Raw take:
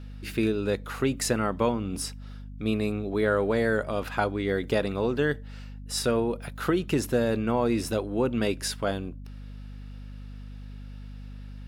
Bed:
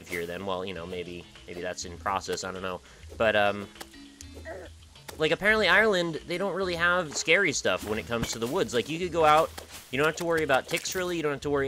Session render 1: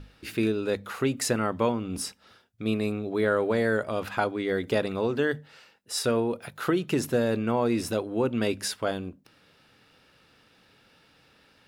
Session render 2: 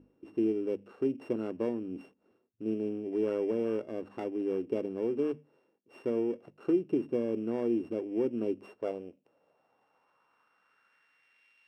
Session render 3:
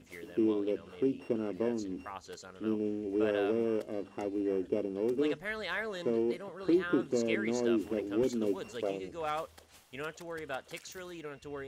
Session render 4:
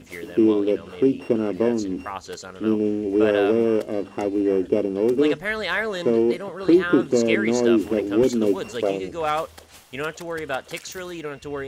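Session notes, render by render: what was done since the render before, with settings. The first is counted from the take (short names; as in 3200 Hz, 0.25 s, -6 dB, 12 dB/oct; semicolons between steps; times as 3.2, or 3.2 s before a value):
notches 50/100/150/200/250 Hz
sample sorter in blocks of 16 samples; band-pass sweep 340 Hz -> 2400 Hz, 8.51–11.54
add bed -15 dB
gain +11.5 dB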